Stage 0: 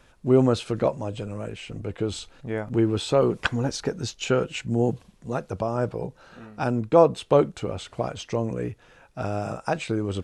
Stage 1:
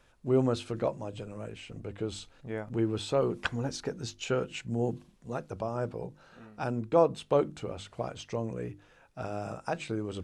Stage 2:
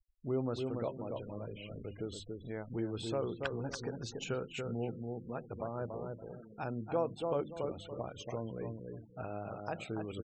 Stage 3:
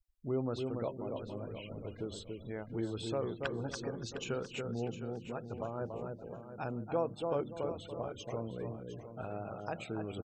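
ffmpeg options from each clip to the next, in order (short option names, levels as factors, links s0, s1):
-af "bandreject=f=50:t=h:w=6,bandreject=f=100:t=h:w=6,bandreject=f=150:t=h:w=6,bandreject=f=200:t=h:w=6,bandreject=f=250:t=h:w=6,bandreject=f=300:t=h:w=6,bandreject=f=350:t=h:w=6,volume=0.447"
-filter_complex "[0:a]asplit=2[s0][s1];[s1]adelay=283,lowpass=f=1900:p=1,volume=0.531,asplit=2[s2][s3];[s3]adelay=283,lowpass=f=1900:p=1,volume=0.23,asplit=2[s4][s5];[s5]adelay=283,lowpass=f=1900:p=1,volume=0.23[s6];[s0][s2][s4][s6]amix=inputs=4:normalize=0,afftfilt=real='re*gte(hypot(re,im),0.00708)':imag='im*gte(hypot(re,im),0.00708)':win_size=1024:overlap=0.75,acompressor=threshold=0.0126:ratio=1.5,volume=0.708"
-af "aecho=1:1:708|1416|2124:0.266|0.0612|0.0141"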